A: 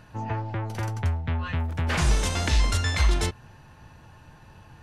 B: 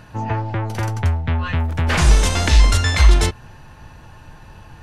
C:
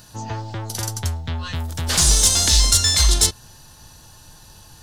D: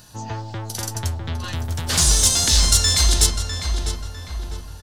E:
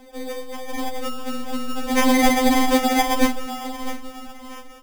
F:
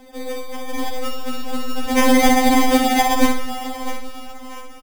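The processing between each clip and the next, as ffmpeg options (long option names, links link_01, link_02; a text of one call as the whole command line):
ffmpeg -i in.wav -af "asubboost=boost=2:cutoff=65,volume=7.5dB" out.wav
ffmpeg -i in.wav -af "aexciter=amount=5.1:drive=8.4:freq=3500,volume=-6.5dB" out.wav
ffmpeg -i in.wav -filter_complex "[0:a]asplit=2[link_01][link_02];[link_02]adelay=652,lowpass=frequency=2400:poles=1,volume=-5dB,asplit=2[link_03][link_04];[link_04]adelay=652,lowpass=frequency=2400:poles=1,volume=0.52,asplit=2[link_05][link_06];[link_06]adelay=652,lowpass=frequency=2400:poles=1,volume=0.52,asplit=2[link_07][link_08];[link_08]adelay=652,lowpass=frequency=2400:poles=1,volume=0.52,asplit=2[link_09][link_10];[link_10]adelay=652,lowpass=frequency=2400:poles=1,volume=0.52,asplit=2[link_11][link_12];[link_12]adelay=652,lowpass=frequency=2400:poles=1,volume=0.52,asplit=2[link_13][link_14];[link_14]adelay=652,lowpass=frequency=2400:poles=1,volume=0.52[link_15];[link_01][link_03][link_05][link_07][link_09][link_11][link_13][link_15]amix=inputs=8:normalize=0,volume=-1dB" out.wav
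ffmpeg -i in.wav -af "acrusher=samples=32:mix=1:aa=0.000001,afftfilt=real='re*3.46*eq(mod(b,12),0)':imag='im*3.46*eq(mod(b,12),0)':win_size=2048:overlap=0.75,volume=4dB" out.wav
ffmpeg -i in.wav -af "aecho=1:1:63|126|189|252:0.473|0.17|0.0613|0.0221,volume=1.5dB" out.wav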